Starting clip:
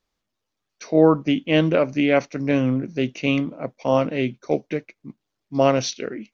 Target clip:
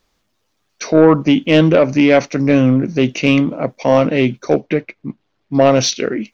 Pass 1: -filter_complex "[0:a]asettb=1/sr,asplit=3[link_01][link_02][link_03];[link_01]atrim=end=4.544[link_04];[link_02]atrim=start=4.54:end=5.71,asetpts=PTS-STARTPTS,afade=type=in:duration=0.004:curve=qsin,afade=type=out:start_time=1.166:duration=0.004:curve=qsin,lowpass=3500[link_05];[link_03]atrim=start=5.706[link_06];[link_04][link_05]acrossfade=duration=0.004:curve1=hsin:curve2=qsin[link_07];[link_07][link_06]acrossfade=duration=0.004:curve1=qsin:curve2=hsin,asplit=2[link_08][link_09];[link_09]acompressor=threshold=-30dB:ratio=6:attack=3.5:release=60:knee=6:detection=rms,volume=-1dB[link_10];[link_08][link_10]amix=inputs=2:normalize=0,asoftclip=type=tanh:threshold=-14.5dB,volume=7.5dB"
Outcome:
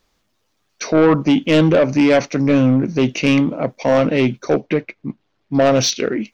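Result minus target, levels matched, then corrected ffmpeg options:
soft clipping: distortion +6 dB
-filter_complex "[0:a]asettb=1/sr,asplit=3[link_01][link_02][link_03];[link_01]atrim=end=4.544[link_04];[link_02]atrim=start=4.54:end=5.71,asetpts=PTS-STARTPTS,afade=type=in:duration=0.004:curve=qsin,afade=type=out:start_time=1.166:duration=0.004:curve=qsin,lowpass=3500[link_05];[link_03]atrim=start=5.706[link_06];[link_04][link_05]acrossfade=duration=0.004:curve1=hsin:curve2=qsin[link_07];[link_07][link_06]acrossfade=duration=0.004:curve1=qsin:curve2=hsin,asplit=2[link_08][link_09];[link_09]acompressor=threshold=-30dB:ratio=6:attack=3.5:release=60:knee=6:detection=rms,volume=-1dB[link_10];[link_08][link_10]amix=inputs=2:normalize=0,asoftclip=type=tanh:threshold=-8.5dB,volume=7.5dB"

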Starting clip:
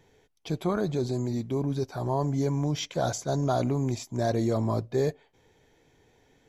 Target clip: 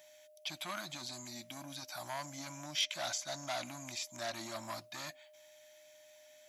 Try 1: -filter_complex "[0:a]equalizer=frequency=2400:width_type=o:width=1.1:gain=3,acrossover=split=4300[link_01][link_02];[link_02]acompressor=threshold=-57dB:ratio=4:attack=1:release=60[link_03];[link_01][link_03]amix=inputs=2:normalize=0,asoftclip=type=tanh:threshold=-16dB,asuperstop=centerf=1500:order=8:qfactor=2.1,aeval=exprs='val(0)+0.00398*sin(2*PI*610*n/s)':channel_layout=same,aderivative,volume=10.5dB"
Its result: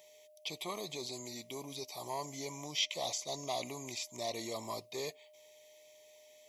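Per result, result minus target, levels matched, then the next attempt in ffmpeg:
soft clipping: distortion −10 dB; 2,000 Hz band −4.0 dB
-filter_complex "[0:a]equalizer=frequency=2400:width_type=o:width=1.1:gain=3,acrossover=split=4300[link_01][link_02];[link_02]acompressor=threshold=-57dB:ratio=4:attack=1:release=60[link_03];[link_01][link_03]amix=inputs=2:normalize=0,asoftclip=type=tanh:threshold=-23dB,asuperstop=centerf=1500:order=8:qfactor=2.1,aeval=exprs='val(0)+0.00398*sin(2*PI*610*n/s)':channel_layout=same,aderivative,volume=10.5dB"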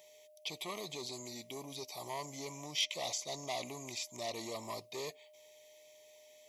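2,000 Hz band −3.0 dB
-filter_complex "[0:a]equalizer=frequency=2400:width_type=o:width=1.1:gain=3,acrossover=split=4300[link_01][link_02];[link_02]acompressor=threshold=-57dB:ratio=4:attack=1:release=60[link_03];[link_01][link_03]amix=inputs=2:normalize=0,asoftclip=type=tanh:threshold=-23dB,asuperstop=centerf=440:order=8:qfactor=2.1,aeval=exprs='val(0)+0.00398*sin(2*PI*610*n/s)':channel_layout=same,aderivative,volume=10.5dB"

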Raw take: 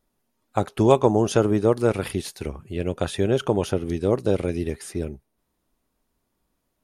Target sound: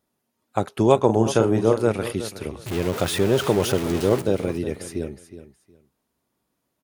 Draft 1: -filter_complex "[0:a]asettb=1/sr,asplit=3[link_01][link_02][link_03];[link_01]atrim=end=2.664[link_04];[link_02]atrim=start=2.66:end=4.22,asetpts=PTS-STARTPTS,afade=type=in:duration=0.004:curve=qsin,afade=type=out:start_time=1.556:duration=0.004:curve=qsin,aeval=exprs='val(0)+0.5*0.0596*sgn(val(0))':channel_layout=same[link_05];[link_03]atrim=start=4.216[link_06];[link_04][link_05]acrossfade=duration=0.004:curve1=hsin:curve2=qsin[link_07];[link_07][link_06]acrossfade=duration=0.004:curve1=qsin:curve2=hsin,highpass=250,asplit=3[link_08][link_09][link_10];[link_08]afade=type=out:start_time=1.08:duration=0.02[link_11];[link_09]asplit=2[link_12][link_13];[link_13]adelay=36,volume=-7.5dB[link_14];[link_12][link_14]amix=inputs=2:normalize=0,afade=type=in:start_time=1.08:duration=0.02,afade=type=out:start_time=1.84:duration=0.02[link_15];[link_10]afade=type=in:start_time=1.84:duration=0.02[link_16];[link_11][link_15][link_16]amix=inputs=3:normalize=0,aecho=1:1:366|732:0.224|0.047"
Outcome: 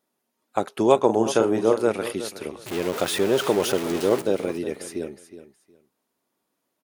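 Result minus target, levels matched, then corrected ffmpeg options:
125 Hz band −9.5 dB
-filter_complex "[0:a]asettb=1/sr,asplit=3[link_01][link_02][link_03];[link_01]atrim=end=2.664[link_04];[link_02]atrim=start=2.66:end=4.22,asetpts=PTS-STARTPTS,afade=type=in:duration=0.004:curve=qsin,afade=type=out:start_time=1.556:duration=0.004:curve=qsin,aeval=exprs='val(0)+0.5*0.0596*sgn(val(0))':channel_layout=same[link_05];[link_03]atrim=start=4.216[link_06];[link_04][link_05]acrossfade=duration=0.004:curve1=hsin:curve2=qsin[link_07];[link_07][link_06]acrossfade=duration=0.004:curve1=qsin:curve2=hsin,highpass=91,asplit=3[link_08][link_09][link_10];[link_08]afade=type=out:start_time=1.08:duration=0.02[link_11];[link_09]asplit=2[link_12][link_13];[link_13]adelay=36,volume=-7.5dB[link_14];[link_12][link_14]amix=inputs=2:normalize=0,afade=type=in:start_time=1.08:duration=0.02,afade=type=out:start_time=1.84:duration=0.02[link_15];[link_10]afade=type=in:start_time=1.84:duration=0.02[link_16];[link_11][link_15][link_16]amix=inputs=3:normalize=0,aecho=1:1:366|732:0.224|0.047"

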